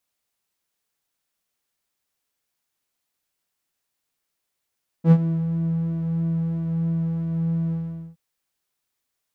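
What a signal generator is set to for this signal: synth patch with pulse-width modulation E3, oscillator 2 saw, detune 17 cents, sub -23 dB, filter bandpass, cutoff 100 Hz, Q 1.7, filter envelope 1.5 oct, filter decay 0.42 s, filter sustain 20%, attack 73 ms, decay 0.06 s, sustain -14.5 dB, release 0.43 s, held 2.69 s, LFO 3 Hz, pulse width 43%, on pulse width 5%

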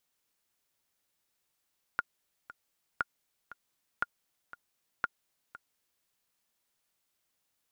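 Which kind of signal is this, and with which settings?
metronome 118 bpm, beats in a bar 2, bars 4, 1420 Hz, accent 17 dB -15.5 dBFS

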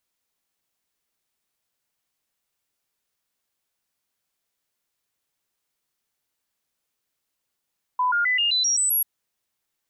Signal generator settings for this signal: stepped sine 1000 Hz up, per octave 2, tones 8, 0.13 s, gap 0.00 s -18.5 dBFS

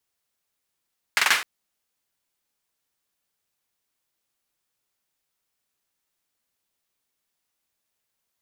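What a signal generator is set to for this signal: hand clap length 0.26 s, bursts 4, apart 45 ms, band 1800 Hz, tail 0.38 s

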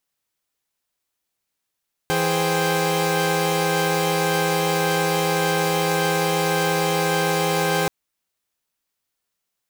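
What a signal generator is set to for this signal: chord E3/G#4/C5/G5 saw, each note -22 dBFS 5.78 s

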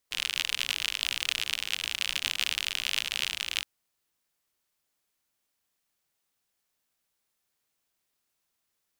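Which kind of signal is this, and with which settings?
rain from filtered ticks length 3.52 s, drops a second 62, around 2900 Hz, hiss -22.5 dB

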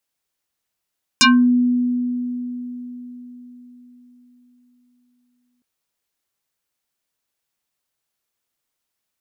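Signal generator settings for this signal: FM tone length 4.41 s, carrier 246 Hz, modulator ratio 5.32, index 6.7, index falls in 0.25 s exponential, decay 4.53 s, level -8 dB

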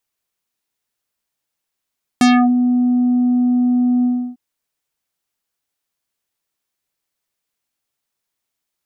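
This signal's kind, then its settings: synth note square B3 24 dB/oct, low-pass 490 Hz, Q 1.3, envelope 4.5 oct, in 0.28 s, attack 2.1 ms, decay 0.33 s, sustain -6 dB, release 0.32 s, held 1.83 s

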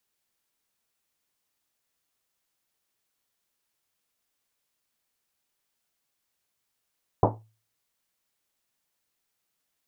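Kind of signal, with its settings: Risset drum, pitch 110 Hz, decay 0.39 s, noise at 580 Hz, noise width 770 Hz, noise 60%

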